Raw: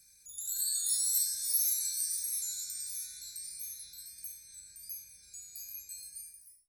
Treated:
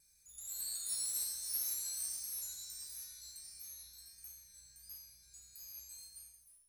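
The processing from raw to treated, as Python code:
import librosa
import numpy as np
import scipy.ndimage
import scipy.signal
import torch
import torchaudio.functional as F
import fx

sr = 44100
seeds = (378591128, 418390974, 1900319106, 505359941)

y = fx.low_shelf(x, sr, hz=130.0, db=7.5)
y = fx.comb_fb(y, sr, f0_hz=62.0, decay_s=0.71, harmonics='all', damping=0.0, mix_pct=80)
y = fx.mod_noise(y, sr, seeds[0], snr_db=19)
y = fx.vibrato(y, sr, rate_hz=1.5, depth_cents=13.0)
y = F.gain(torch.from_numpy(y), 1.0).numpy()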